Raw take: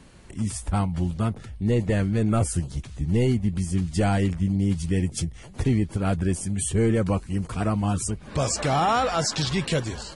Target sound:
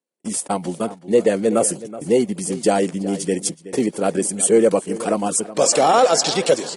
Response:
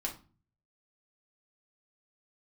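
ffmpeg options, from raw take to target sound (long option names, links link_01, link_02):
-filter_complex "[0:a]highpass=frequency=200:width=0.5412,highpass=frequency=200:width=1.3066,bandreject=frequency=620:width=20,agate=range=-43dB:threshold=-39dB:ratio=16:detection=peak,equalizer=frequency=520:width=1.1:gain=12.5,acrossover=split=1200[link_01][link_02];[link_02]crystalizer=i=2.5:c=0[link_03];[link_01][link_03]amix=inputs=2:normalize=0,atempo=1.5,asplit=2[link_04][link_05];[link_05]adelay=373.2,volume=-15dB,highshelf=frequency=4000:gain=-8.4[link_06];[link_04][link_06]amix=inputs=2:normalize=0,volume=1.5dB"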